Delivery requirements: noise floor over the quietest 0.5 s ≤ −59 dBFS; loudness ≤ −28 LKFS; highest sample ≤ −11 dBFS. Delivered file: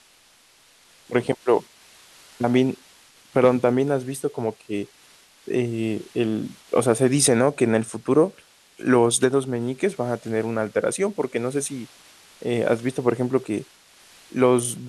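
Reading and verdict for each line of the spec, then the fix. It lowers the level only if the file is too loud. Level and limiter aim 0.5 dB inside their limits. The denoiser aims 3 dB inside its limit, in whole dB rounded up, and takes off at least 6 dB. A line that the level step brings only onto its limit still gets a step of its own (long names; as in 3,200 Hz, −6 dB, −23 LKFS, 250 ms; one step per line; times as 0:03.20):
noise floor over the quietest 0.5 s −56 dBFS: out of spec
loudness −23.0 LKFS: out of spec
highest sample −4.5 dBFS: out of spec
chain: level −5.5 dB
brickwall limiter −11.5 dBFS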